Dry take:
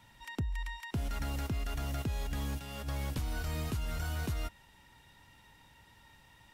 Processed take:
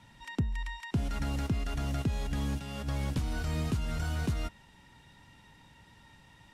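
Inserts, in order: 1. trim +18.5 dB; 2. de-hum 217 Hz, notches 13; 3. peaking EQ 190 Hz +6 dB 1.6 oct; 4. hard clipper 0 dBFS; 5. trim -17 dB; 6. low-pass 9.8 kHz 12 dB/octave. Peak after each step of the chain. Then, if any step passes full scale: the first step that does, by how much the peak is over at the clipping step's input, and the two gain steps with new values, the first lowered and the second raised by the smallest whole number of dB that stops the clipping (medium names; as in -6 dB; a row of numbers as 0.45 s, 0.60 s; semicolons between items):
-8.5 dBFS, -8.0 dBFS, -3.0 dBFS, -3.0 dBFS, -20.0 dBFS, -20.0 dBFS; nothing clips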